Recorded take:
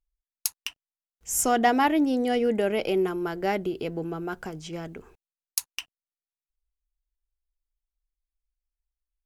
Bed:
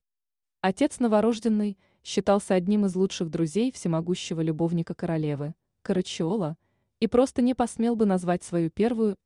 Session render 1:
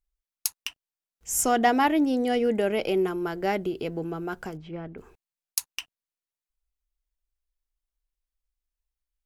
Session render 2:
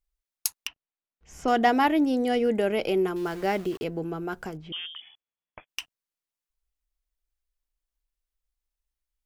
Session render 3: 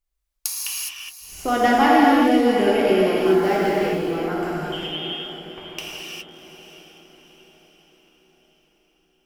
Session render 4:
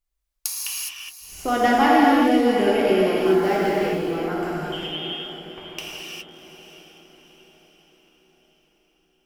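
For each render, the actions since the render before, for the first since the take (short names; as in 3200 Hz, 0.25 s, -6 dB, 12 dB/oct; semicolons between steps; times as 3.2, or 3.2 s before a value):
4.57–4.98 air absorption 470 m
0.67–1.48 air absorption 260 m; 3.16–3.84 sample gate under -40 dBFS; 4.72–5.68 inverted band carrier 3400 Hz
diffused feedback echo 0.682 s, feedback 48%, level -12.5 dB; non-linear reverb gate 0.44 s flat, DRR -6.5 dB
gain -1 dB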